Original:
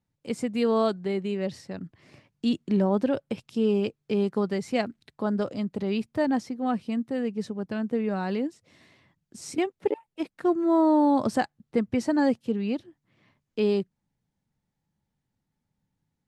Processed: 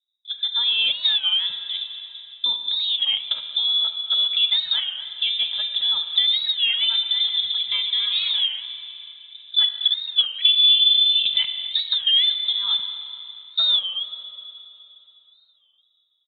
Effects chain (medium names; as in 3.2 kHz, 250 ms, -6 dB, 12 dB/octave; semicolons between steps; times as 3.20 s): 6.45–8.46 s: chunks repeated in reverse 161 ms, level -4 dB; peak limiter -18 dBFS, peak gain reduction 6 dB; rotary cabinet horn 0.85 Hz; level-controlled noise filter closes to 360 Hz, open at -24 dBFS; level rider gain up to 11 dB; treble shelf 2.9 kHz -10.5 dB; compression, threshold -20 dBFS, peak gain reduction 8 dB; comb 2.8 ms, depth 95%; speakerphone echo 230 ms, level -16 dB; frequency inversion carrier 3.8 kHz; Schroeder reverb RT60 3.1 s, combs from 32 ms, DRR 7 dB; warped record 33 1/3 rpm, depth 160 cents